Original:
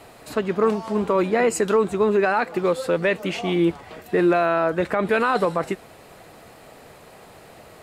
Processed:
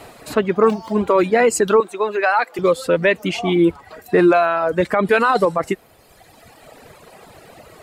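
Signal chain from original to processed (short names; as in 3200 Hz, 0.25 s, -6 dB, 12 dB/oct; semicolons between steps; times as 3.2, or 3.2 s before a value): 0.68–1.08 median filter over 5 samples; reverb removal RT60 1.8 s; 1.8–2.59 HPF 550 Hz 12 dB/oct; gain +6 dB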